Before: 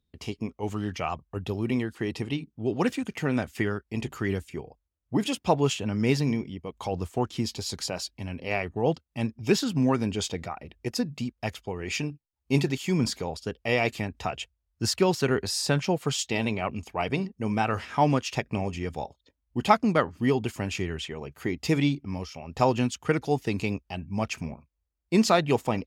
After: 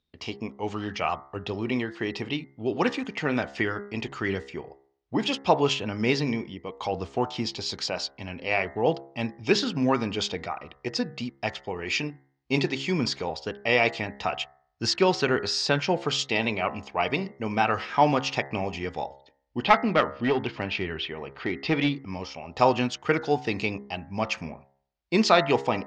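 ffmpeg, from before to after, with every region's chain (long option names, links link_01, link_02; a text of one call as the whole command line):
ffmpeg -i in.wav -filter_complex "[0:a]asettb=1/sr,asplit=3[link_01][link_02][link_03];[link_01]atrim=end=19.644[link_04];[link_02]atrim=start=19.64:end=21.96,asetpts=PTS-STARTPTS,afade=type=in:duration=0.004:curve=qsin,afade=type=out:start_time=2.316:duration=0.004:curve=qsin,lowpass=frequency=4300:width=0.5412,lowpass=frequency=4300:width=1.3066,acompressor=mode=upward:threshold=-37dB:ratio=2.5:attack=3.2:release=140:knee=2.83:detection=peak,aeval=exprs='clip(val(0),-1,0.112)':channel_layout=same[link_05];[link_03]atrim=start=21.956[link_06];[link_04][link_05]acrossfade=duration=0.004:curve1=hsin:curve2=qsin[link_07];[link_07][link_06]acrossfade=duration=0.004:curve1=qsin:curve2=hsin,lowpass=frequency=5400:width=0.5412,lowpass=frequency=5400:width=1.3066,lowshelf=frequency=270:gain=-11,bandreject=frequency=68.04:width_type=h:width=4,bandreject=frequency=136.08:width_type=h:width=4,bandreject=frequency=204.12:width_type=h:width=4,bandreject=frequency=272.16:width_type=h:width=4,bandreject=frequency=340.2:width_type=h:width=4,bandreject=frequency=408.24:width_type=h:width=4,bandreject=frequency=476.28:width_type=h:width=4,bandreject=frequency=544.32:width_type=h:width=4,bandreject=frequency=612.36:width_type=h:width=4,bandreject=frequency=680.4:width_type=h:width=4,bandreject=frequency=748.44:width_type=h:width=4,bandreject=frequency=816.48:width_type=h:width=4,bandreject=frequency=884.52:width_type=h:width=4,bandreject=frequency=952.56:width_type=h:width=4,bandreject=frequency=1020.6:width_type=h:width=4,bandreject=frequency=1088.64:width_type=h:width=4,bandreject=frequency=1156.68:width_type=h:width=4,bandreject=frequency=1224.72:width_type=h:width=4,bandreject=frequency=1292.76:width_type=h:width=4,bandreject=frequency=1360.8:width_type=h:width=4,bandreject=frequency=1428.84:width_type=h:width=4,bandreject=frequency=1496.88:width_type=h:width=4,bandreject=frequency=1564.92:width_type=h:width=4,bandreject=frequency=1632.96:width_type=h:width=4,bandreject=frequency=1701:width_type=h:width=4,bandreject=frequency=1769.04:width_type=h:width=4,bandreject=frequency=1837.08:width_type=h:width=4,bandreject=frequency=1905.12:width_type=h:width=4,bandreject=frequency=1973.16:width_type=h:width=4,bandreject=frequency=2041.2:width_type=h:width=4,bandreject=frequency=2109.24:width_type=h:width=4,volume=5dB" out.wav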